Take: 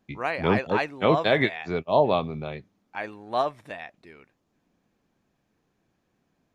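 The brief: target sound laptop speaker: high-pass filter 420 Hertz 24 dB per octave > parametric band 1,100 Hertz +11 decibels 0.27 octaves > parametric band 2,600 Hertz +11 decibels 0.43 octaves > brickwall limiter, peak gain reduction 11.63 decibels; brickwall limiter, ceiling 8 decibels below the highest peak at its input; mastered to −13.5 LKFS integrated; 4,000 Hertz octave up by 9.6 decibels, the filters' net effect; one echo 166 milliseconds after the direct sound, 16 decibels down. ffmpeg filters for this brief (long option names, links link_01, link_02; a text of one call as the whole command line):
ffmpeg -i in.wav -af "equalizer=frequency=4000:width_type=o:gain=8,alimiter=limit=-13dB:level=0:latency=1,highpass=frequency=420:width=0.5412,highpass=frequency=420:width=1.3066,equalizer=frequency=1100:width_type=o:width=0.27:gain=11,equalizer=frequency=2600:width_type=o:width=0.43:gain=11,aecho=1:1:166:0.158,volume=18.5dB,alimiter=limit=-2dB:level=0:latency=1" out.wav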